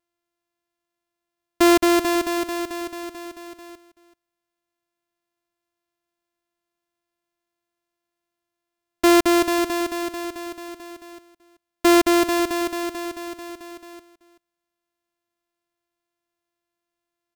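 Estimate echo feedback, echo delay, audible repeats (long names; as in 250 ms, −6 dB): repeats not evenly spaced, 382 ms, 1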